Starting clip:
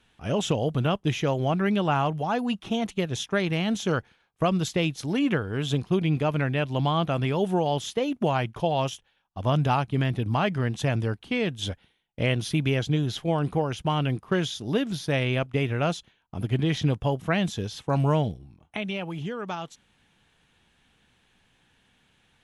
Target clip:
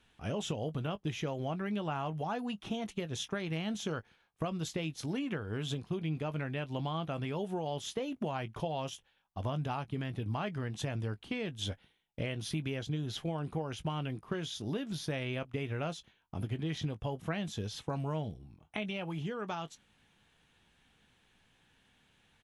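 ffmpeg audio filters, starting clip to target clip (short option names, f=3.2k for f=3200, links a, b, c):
-filter_complex "[0:a]acompressor=threshold=-29dB:ratio=5,asplit=2[a][b];[b]adelay=19,volume=-13dB[c];[a][c]amix=inputs=2:normalize=0,volume=-4dB"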